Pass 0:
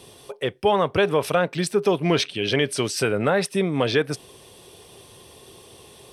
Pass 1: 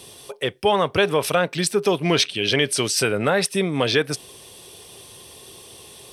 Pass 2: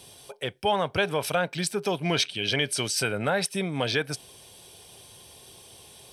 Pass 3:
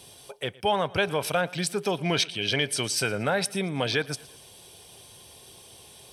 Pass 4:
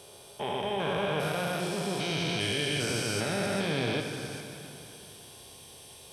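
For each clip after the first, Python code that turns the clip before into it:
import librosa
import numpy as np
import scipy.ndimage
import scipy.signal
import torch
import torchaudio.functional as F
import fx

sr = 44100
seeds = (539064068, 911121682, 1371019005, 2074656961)

y1 = fx.high_shelf(x, sr, hz=2400.0, db=7.5)
y2 = y1 + 0.32 * np.pad(y1, (int(1.3 * sr / 1000.0), 0))[:len(y1)]
y2 = y2 * 10.0 ** (-6.0 / 20.0)
y3 = fx.echo_feedback(y2, sr, ms=115, feedback_pct=46, wet_db=-22.0)
y4 = fx.spec_steps(y3, sr, hold_ms=400)
y4 = fx.rev_plate(y4, sr, seeds[0], rt60_s=3.1, hf_ratio=0.85, predelay_ms=0, drr_db=3.5)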